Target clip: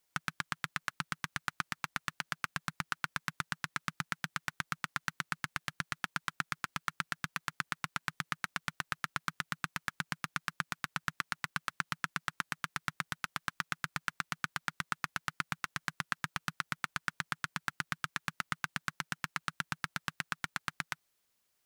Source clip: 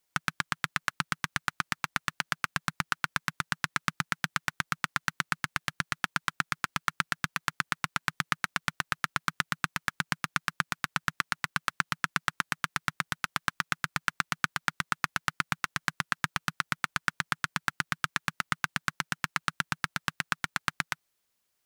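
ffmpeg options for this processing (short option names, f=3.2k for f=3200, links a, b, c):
-af "alimiter=limit=-12.5dB:level=0:latency=1:release=43"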